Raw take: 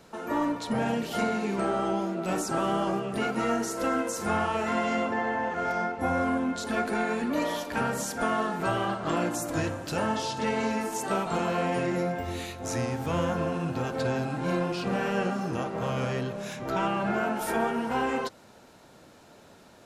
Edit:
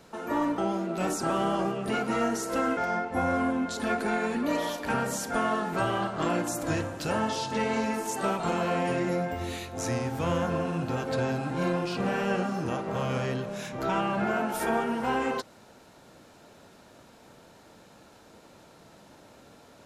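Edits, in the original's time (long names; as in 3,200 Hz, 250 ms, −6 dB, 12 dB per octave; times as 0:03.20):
0:00.58–0:01.86: remove
0:04.05–0:05.64: remove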